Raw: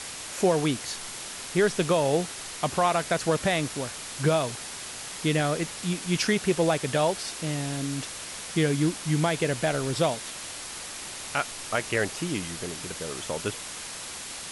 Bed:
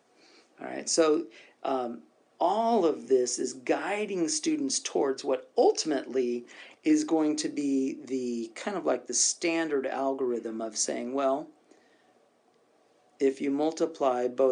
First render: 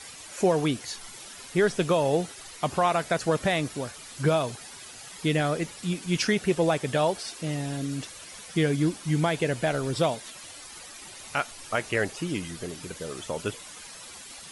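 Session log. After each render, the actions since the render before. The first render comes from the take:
broadband denoise 11 dB, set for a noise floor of −39 dBFS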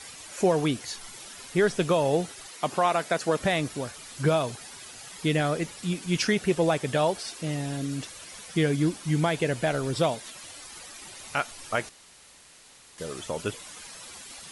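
0:02.46–0:03.40: high-pass filter 190 Hz
0:11.89–0:12.98: fill with room tone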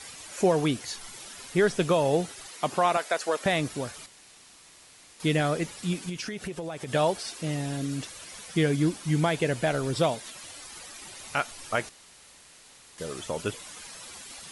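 0:02.97–0:03.46: high-pass filter 450 Hz
0:04.06–0:05.20: fill with room tone
0:06.09–0:06.93: downward compressor 8 to 1, threshold −31 dBFS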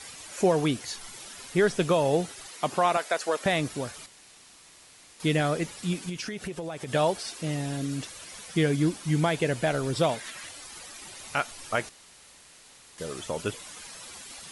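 0:10.09–0:10.49: parametric band 1,800 Hz +9 dB 1 octave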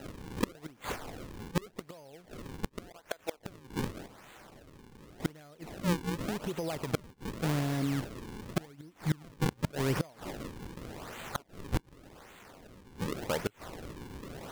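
sample-and-hold swept by an LFO 39×, swing 160% 0.87 Hz
gate with flip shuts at −18 dBFS, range −28 dB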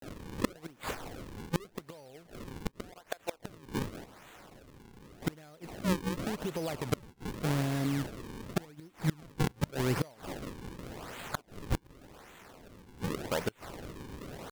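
pitch vibrato 0.38 Hz 88 cents
floating-point word with a short mantissa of 2 bits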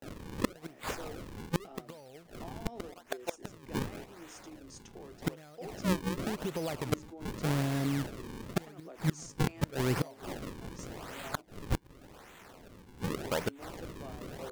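mix in bed −23 dB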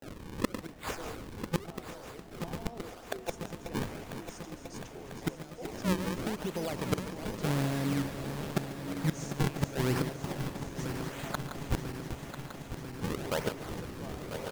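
feedback delay that plays each chunk backwards 497 ms, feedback 83%, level −9 dB
single-tap delay 143 ms −15 dB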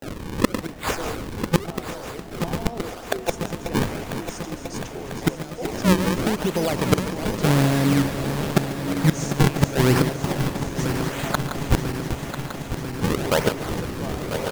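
level +12 dB
brickwall limiter −1 dBFS, peak gain reduction 1 dB

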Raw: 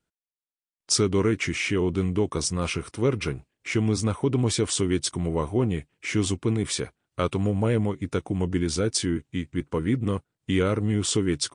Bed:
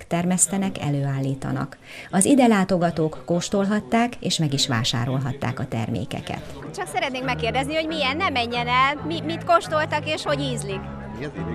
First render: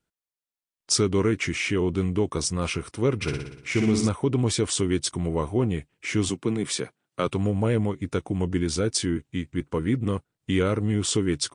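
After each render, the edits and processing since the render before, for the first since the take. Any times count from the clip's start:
0:03.15–0:04.09: flutter between parallel walls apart 10.2 metres, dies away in 0.77 s
0:06.29–0:07.27: high-pass filter 130 Hz 24 dB per octave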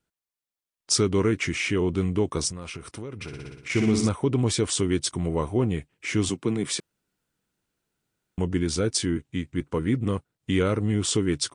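0:02.49–0:03.70: downward compressor 12 to 1, threshold −32 dBFS
0:06.80–0:08.38: fill with room tone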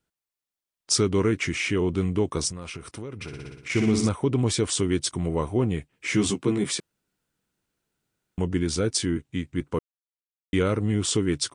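0:05.92–0:06.71: double-tracking delay 15 ms −2 dB
0:09.79–0:10.53: silence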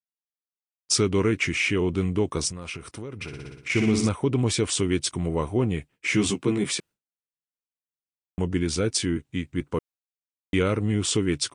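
downward expander −44 dBFS
dynamic equaliser 2,500 Hz, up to +5 dB, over −46 dBFS, Q 2.7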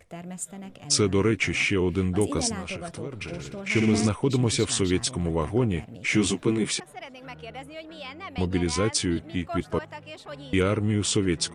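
mix in bed −16.5 dB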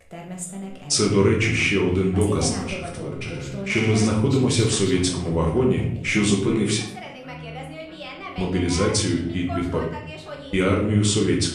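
rectangular room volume 140 cubic metres, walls mixed, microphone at 0.99 metres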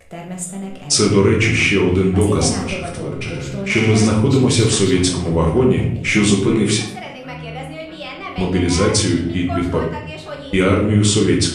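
level +5.5 dB
brickwall limiter −3 dBFS, peak gain reduction 2.5 dB

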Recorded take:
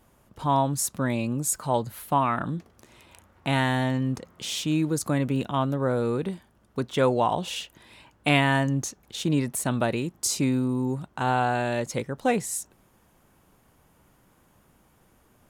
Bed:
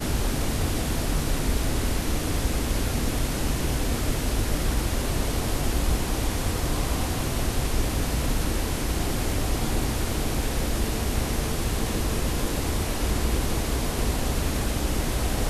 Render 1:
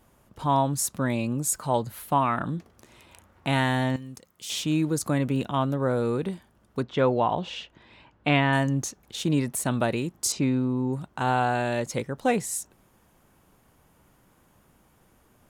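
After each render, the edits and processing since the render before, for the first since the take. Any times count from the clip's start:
0:03.96–0:04.50: first-order pre-emphasis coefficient 0.8
0:06.82–0:08.53: high-frequency loss of the air 160 metres
0:10.32–0:10.93: high-frequency loss of the air 130 metres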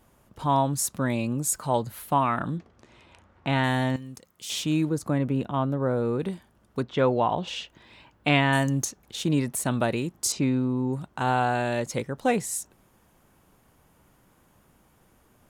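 0:02.58–0:03.64: high-frequency loss of the air 97 metres
0:04.89–0:06.20: high-shelf EQ 2,300 Hz −10.5 dB
0:07.47–0:08.85: high-shelf EQ 5,800 Hz +11 dB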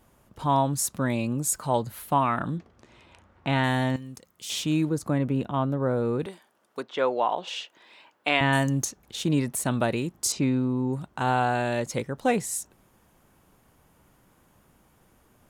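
0:06.26–0:08.41: high-pass filter 430 Hz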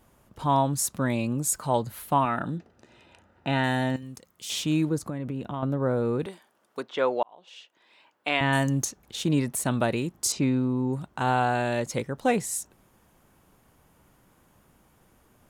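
0:02.25–0:04.03: notch comb filter 1,100 Hz
0:05.05–0:05.63: downward compressor, threshold −28 dBFS
0:07.23–0:08.70: fade in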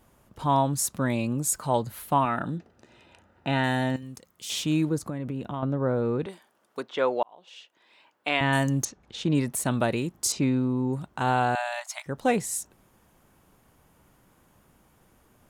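0:05.60–0:06.29: high-frequency loss of the air 82 metres
0:08.85–0:09.35: high-frequency loss of the air 100 metres
0:11.55–0:12.06: linear-phase brick-wall high-pass 600 Hz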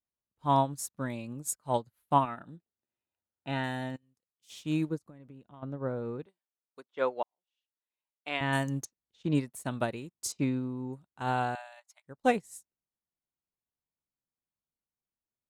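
expander for the loud parts 2.5 to 1, over −46 dBFS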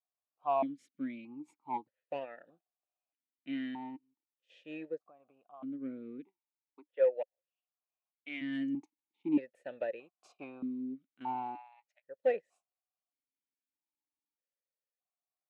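mid-hump overdrive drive 17 dB, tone 1,200 Hz, clips at −11 dBFS
formant filter that steps through the vowels 1.6 Hz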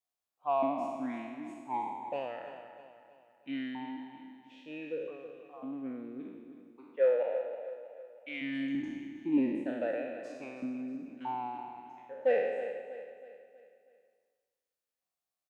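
peak hold with a decay on every bin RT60 1.31 s
on a send: repeating echo 321 ms, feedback 45%, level −11.5 dB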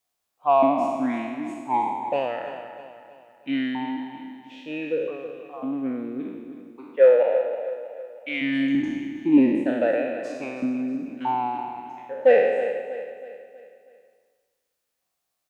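level +11.5 dB

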